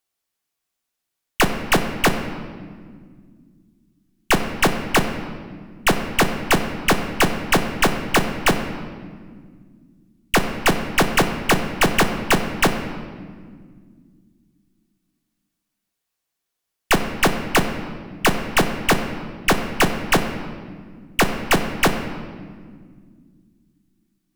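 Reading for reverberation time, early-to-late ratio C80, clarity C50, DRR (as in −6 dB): 1.8 s, 9.5 dB, 8.5 dB, 5.0 dB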